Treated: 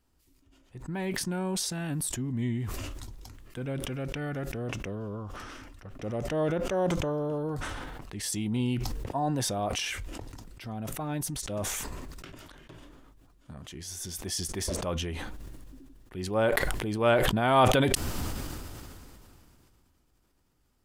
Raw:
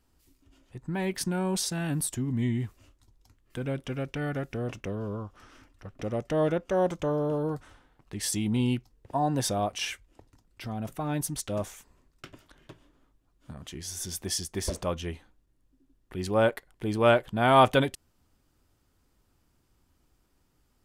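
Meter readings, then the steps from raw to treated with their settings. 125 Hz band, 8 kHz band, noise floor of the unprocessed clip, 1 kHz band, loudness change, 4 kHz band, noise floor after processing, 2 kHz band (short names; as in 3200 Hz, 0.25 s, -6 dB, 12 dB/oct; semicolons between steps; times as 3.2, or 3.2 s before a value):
-0.5 dB, +0.5 dB, -70 dBFS, -2.0 dB, -1.5 dB, +1.0 dB, -68 dBFS, +0.5 dB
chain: sustainer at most 21 dB/s; gain -3 dB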